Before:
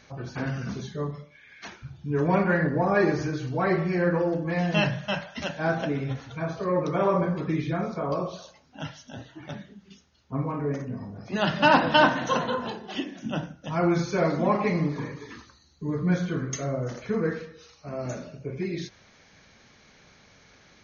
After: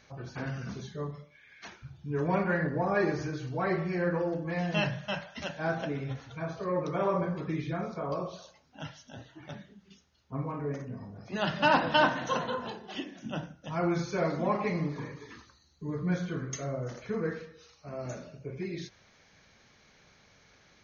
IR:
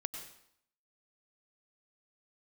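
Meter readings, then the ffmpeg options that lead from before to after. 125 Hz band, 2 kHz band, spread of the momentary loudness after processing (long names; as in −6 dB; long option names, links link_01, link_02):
−5.5 dB, −5.0 dB, 17 LU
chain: -af "equalizer=frequency=250:width_type=o:width=0.77:gain=-2.5,volume=-5dB"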